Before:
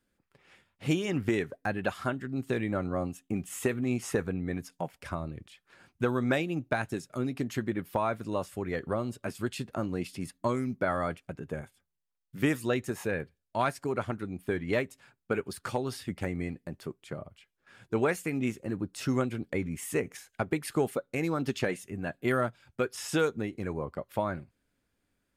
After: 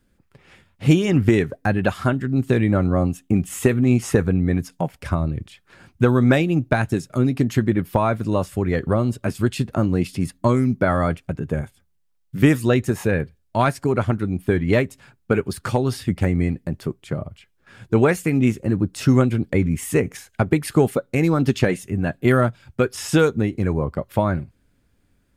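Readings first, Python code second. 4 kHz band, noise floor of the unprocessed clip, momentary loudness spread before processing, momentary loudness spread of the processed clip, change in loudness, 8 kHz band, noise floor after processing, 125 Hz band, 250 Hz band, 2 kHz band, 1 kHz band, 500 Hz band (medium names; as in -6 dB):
+8.0 dB, -80 dBFS, 9 LU, 8 LU, +11.5 dB, +8.0 dB, -65 dBFS, +16.0 dB, +12.5 dB, +8.0 dB, +8.5 dB, +10.0 dB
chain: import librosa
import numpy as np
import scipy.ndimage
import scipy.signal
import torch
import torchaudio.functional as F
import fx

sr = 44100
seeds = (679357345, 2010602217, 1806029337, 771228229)

y = fx.low_shelf(x, sr, hz=210.0, db=11.0)
y = y * 10.0 ** (8.0 / 20.0)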